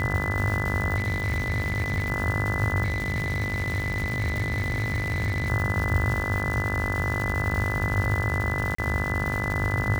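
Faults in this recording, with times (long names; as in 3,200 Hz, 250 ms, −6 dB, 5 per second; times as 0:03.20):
mains buzz 50 Hz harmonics 36 −31 dBFS
surface crackle 420 per second −30 dBFS
whistle 2,000 Hz −29 dBFS
0:00.96–0:02.11: clipping −21.5 dBFS
0:02.83–0:05.50: clipping −22.5 dBFS
0:08.75–0:08.78: drop-out 34 ms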